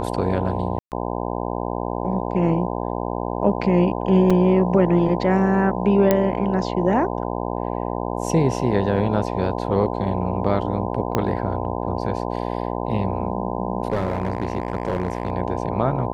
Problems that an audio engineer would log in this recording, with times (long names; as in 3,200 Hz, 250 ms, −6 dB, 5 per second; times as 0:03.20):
mains buzz 60 Hz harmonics 17 −26 dBFS
0:00.79–0:00.92: drop-out 128 ms
0:04.30: drop-out 4.6 ms
0:06.11: click −4 dBFS
0:11.15: click −7 dBFS
0:13.90–0:15.32: clipping −16.5 dBFS